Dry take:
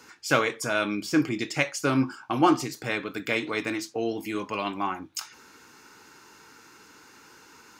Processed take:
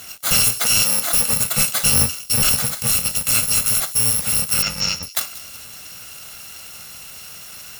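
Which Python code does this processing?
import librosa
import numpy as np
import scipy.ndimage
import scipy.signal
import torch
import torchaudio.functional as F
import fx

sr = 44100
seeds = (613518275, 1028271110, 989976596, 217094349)

y = fx.bit_reversed(x, sr, seeds[0], block=128)
y = fx.highpass(y, sr, hz=260.0, slope=12, at=(0.58, 1.33))
y = fx.quant_companded(y, sr, bits=4)
y = fx.cheby_ripple(y, sr, hz=7200.0, ripple_db=3, at=(4.62, 5.03))
y = fx.fold_sine(y, sr, drive_db=13, ceiling_db=-7.0)
y = fx.echo_wet_highpass(y, sr, ms=184, feedback_pct=48, hz=3600.0, wet_db=-16.0)
y = fx.band_widen(y, sr, depth_pct=70, at=(1.9, 2.73))
y = y * librosa.db_to_amplitude(-3.0)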